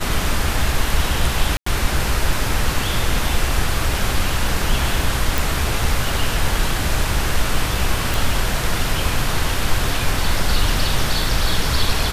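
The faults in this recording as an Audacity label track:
1.570000	1.660000	drop-out 94 ms
5.380000	5.380000	click
8.140000	8.140000	click

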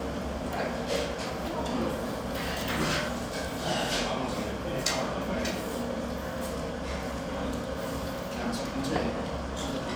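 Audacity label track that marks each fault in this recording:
nothing to report

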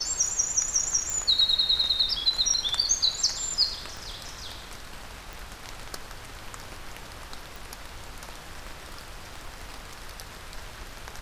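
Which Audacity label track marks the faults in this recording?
1.100000	1.100000	click
3.970000	3.970000	click
5.330000	5.330000	click
7.560000	7.560000	click
8.580000	9.950000	clipping −32 dBFS

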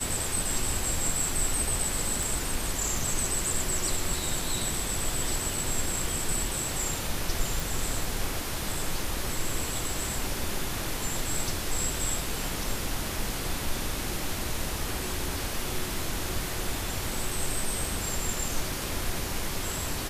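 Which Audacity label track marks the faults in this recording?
2.230000	2.230000	click
7.600000	7.600000	click

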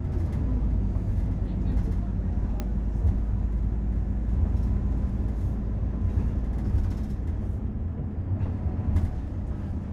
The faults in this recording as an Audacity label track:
2.600000	2.600000	click −17 dBFS

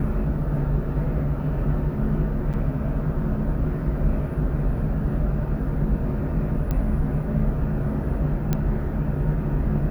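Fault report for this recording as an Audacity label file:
2.530000	2.540000	drop-out 7.6 ms
6.710000	6.710000	click −14 dBFS
8.530000	8.530000	click −10 dBFS

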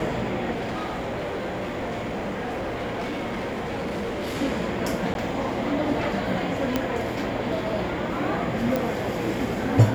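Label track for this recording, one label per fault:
0.510000	4.370000	clipping −26 dBFS
5.140000	5.150000	drop-out 11 ms
6.760000	6.760000	click −9 dBFS
8.760000	8.760000	click

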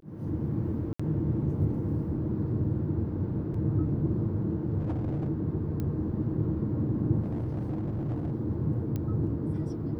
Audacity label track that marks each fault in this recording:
0.930000	0.990000	drop-out 65 ms
3.540000	3.540000	drop-out 3.7 ms
4.790000	5.280000	clipping −27 dBFS
5.800000	5.800000	click −22 dBFS
7.210000	8.320000	clipping −27.5 dBFS
8.960000	8.960000	click −21 dBFS

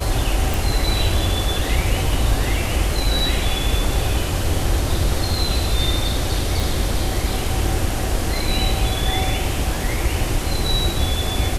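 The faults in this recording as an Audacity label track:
0.540000	0.540000	click
6.600000	6.600000	click
9.110000	9.110000	drop-out 2.7 ms

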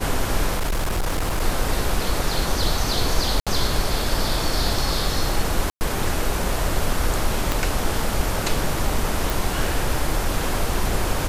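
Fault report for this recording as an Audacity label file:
0.550000	1.420000	clipping −18.5 dBFS
3.400000	3.470000	drop-out 66 ms
5.700000	5.810000	drop-out 109 ms
7.520000	7.520000	click
9.300000	9.300000	click

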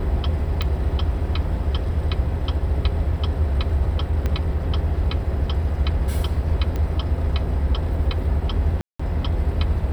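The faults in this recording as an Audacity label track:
0.620000	0.620000	click −12 dBFS
4.260000	4.260000	click −12 dBFS
6.760000	6.760000	click −15 dBFS
8.810000	8.990000	drop-out 185 ms

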